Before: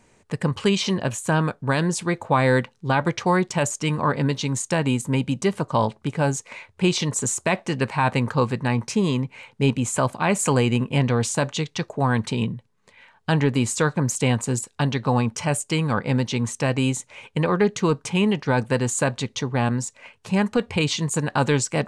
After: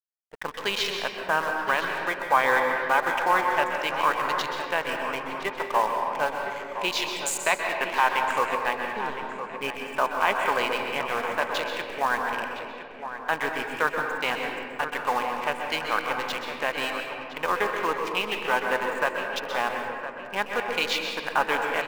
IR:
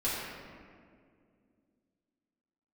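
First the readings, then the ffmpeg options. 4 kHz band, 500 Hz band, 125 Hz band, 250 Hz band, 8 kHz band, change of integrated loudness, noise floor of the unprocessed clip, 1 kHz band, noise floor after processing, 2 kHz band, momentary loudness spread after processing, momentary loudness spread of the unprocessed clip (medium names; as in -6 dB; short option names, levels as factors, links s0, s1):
-1.0 dB, -4.5 dB, -26.5 dB, -16.0 dB, -10.5 dB, -3.5 dB, -62 dBFS, +2.5 dB, -39 dBFS, +3.0 dB, 9 LU, 5 LU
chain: -filter_complex "[0:a]highpass=840,aemphasis=mode=reproduction:type=50kf,afwtdn=0.0141,equalizer=f=9800:t=o:w=0.65:g=6.5,asplit=2[s0][s1];[s1]acrusher=bits=6:dc=4:mix=0:aa=0.000001,volume=0.447[s2];[s0][s2]amix=inputs=2:normalize=0,aeval=exprs='sgn(val(0))*max(abs(val(0))-0.00531,0)':c=same,asplit=2[s3][s4];[s4]adelay=1013,lowpass=f=2600:p=1,volume=0.316,asplit=2[s5][s6];[s6]adelay=1013,lowpass=f=2600:p=1,volume=0.46,asplit=2[s7][s8];[s8]adelay=1013,lowpass=f=2600:p=1,volume=0.46,asplit=2[s9][s10];[s10]adelay=1013,lowpass=f=2600:p=1,volume=0.46,asplit=2[s11][s12];[s12]adelay=1013,lowpass=f=2600:p=1,volume=0.46[s13];[s3][s5][s7][s9][s11][s13]amix=inputs=6:normalize=0,asplit=2[s14][s15];[1:a]atrim=start_sample=2205,adelay=125[s16];[s15][s16]afir=irnorm=-1:irlink=0,volume=0.299[s17];[s14][s17]amix=inputs=2:normalize=0"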